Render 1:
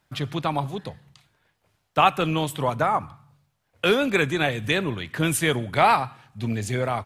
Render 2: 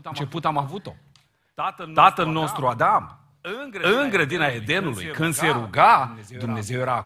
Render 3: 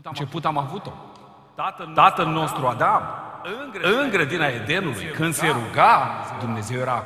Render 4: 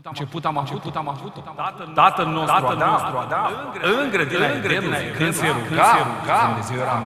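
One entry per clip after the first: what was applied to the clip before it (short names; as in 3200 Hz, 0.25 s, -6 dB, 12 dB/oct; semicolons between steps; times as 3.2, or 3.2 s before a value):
dynamic EQ 1200 Hz, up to +7 dB, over -35 dBFS, Q 1.1; reverse echo 0.39 s -12.5 dB; gain -1 dB
reverb RT60 2.8 s, pre-delay 72 ms, DRR 12.5 dB
feedback echo 0.507 s, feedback 27%, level -3.5 dB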